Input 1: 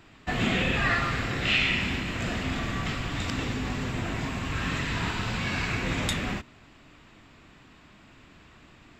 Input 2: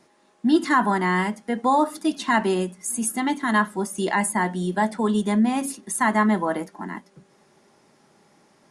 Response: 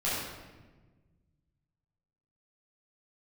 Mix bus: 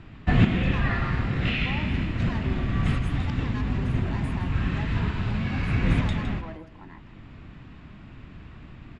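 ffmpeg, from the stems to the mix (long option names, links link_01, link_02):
-filter_complex "[0:a]bass=frequency=250:gain=12,treble=frequency=4000:gain=-9,volume=2dB,asplit=2[link_01][link_02];[link_02]volume=-17.5dB[link_03];[1:a]lowpass=frequency=3300:poles=1,asoftclip=type=tanh:threshold=-22.5dB,volume=-13dB,asplit=3[link_04][link_05][link_06];[link_05]volume=-14dB[link_07];[link_06]apad=whole_len=396660[link_08];[link_01][link_08]sidechaincompress=threshold=-44dB:ratio=8:attack=5:release=806[link_09];[link_03][link_07]amix=inputs=2:normalize=0,aecho=0:1:161:1[link_10];[link_09][link_04][link_10]amix=inputs=3:normalize=0,lowpass=6000"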